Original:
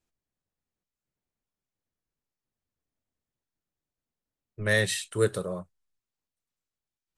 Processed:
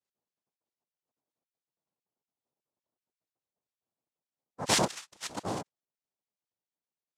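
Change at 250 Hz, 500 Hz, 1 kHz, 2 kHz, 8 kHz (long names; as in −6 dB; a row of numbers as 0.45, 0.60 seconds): −2.0, −8.5, +9.0, −9.0, +2.5 decibels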